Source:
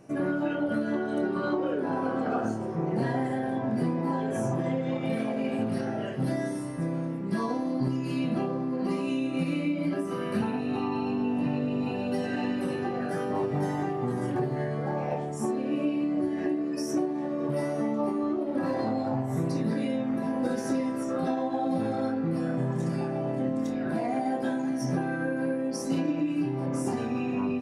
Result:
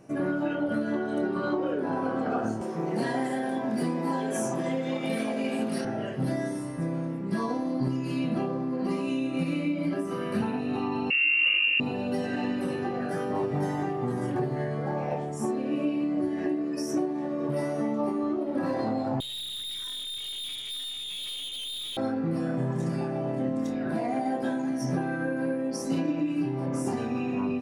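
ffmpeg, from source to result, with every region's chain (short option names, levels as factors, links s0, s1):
-filter_complex "[0:a]asettb=1/sr,asplit=3[s0][s1][s2];[s0]atrim=end=2.614[s3];[s1]atrim=start=2.61:end=5.85,asetpts=PTS-STARTPTS,afade=t=in:d=0.004:c=qsin,afade=t=out:st=3.236:d=0.004:c=qsin,highpass=f=170:w=0.5412,highpass=f=170:w=1.3066,highshelf=f=3000:g=10.5[s4];[s2]atrim=start=5.846[s5];[s3][s4]acrossfade=d=0.004:c1=hsin:c2=qsin[s6];[s6][s5]acrossfade=d=0.004:c1=qsin:c2=hsin,asettb=1/sr,asplit=3[s7][s8][s9];[s7]atrim=end=11.104[s10];[s8]atrim=start=11.1:end=11.8,asetpts=PTS-STARTPTS,afade=t=in:d=0.004:c=qsin,afade=t=out:st=0.696:d=0.004:c=qsin,lowshelf=f=460:g=5.5,lowpass=f=2600:t=q:w=0.5098,lowpass=f=2600:t=q:w=0.6013,lowpass=f=2600:t=q:w=0.9,lowpass=f=2600:t=q:w=2.563,afreqshift=-3000[s11];[s9]atrim=start=11.796[s12];[s10][s11]acrossfade=d=0.004:c1=hsin:c2=qsin[s13];[s13][s12]acrossfade=d=0.004:c1=qsin:c2=hsin,asettb=1/sr,asplit=3[s14][s15][s16];[s14]atrim=end=19.204[s17];[s15]atrim=start=19.2:end=21.97,asetpts=PTS-STARTPTS,afade=t=in:d=0.004:c=qsin,afade=t=out:st=2.766:d=0.004:c=qsin,lowpass=f=3300:t=q:w=0.5098,lowpass=f=3300:t=q:w=0.6013,lowpass=f=3300:t=q:w=0.9,lowpass=f=3300:t=q:w=2.563,afreqshift=-3900,aeval=exprs='(tanh(50.1*val(0)+0.25)-tanh(0.25))/50.1':c=same[s18];[s16]atrim=start=21.966[s19];[s17][s18]acrossfade=d=0.004:c1=hsin:c2=qsin[s20];[s20][s19]acrossfade=d=0.004:c1=qsin:c2=hsin"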